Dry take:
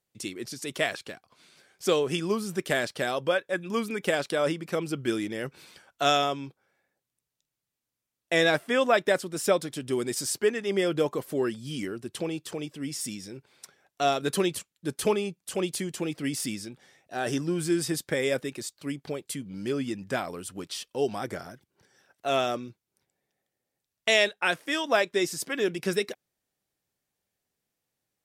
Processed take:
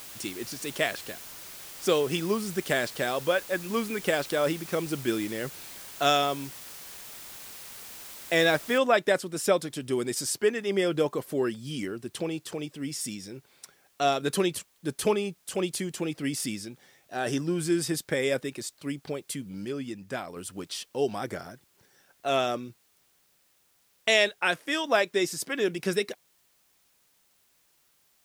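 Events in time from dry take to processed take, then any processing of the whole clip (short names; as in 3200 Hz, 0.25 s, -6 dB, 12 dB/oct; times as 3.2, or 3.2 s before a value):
8.78 noise floor step -44 dB -67 dB
19.65–20.36 gain -4.5 dB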